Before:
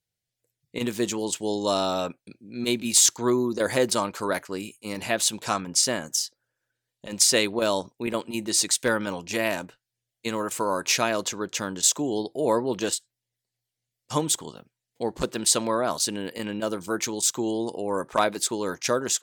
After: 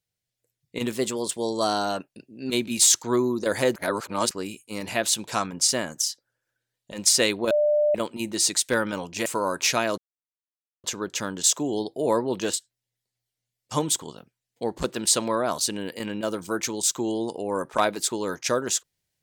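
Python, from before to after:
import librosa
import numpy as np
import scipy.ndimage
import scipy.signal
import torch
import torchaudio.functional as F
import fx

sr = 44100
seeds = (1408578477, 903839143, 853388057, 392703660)

y = fx.edit(x, sr, fx.speed_span(start_s=0.92, length_s=1.72, speed=1.09),
    fx.reverse_span(start_s=3.9, length_s=0.55),
    fx.bleep(start_s=7.65, length_s=0.44, hz=596.0, db=-17.5),
    fx.cut(start_s=9.4, length_s=1.11),
    fx.insert_silence(at_s=11.23, length_s=0.86), tone=tone)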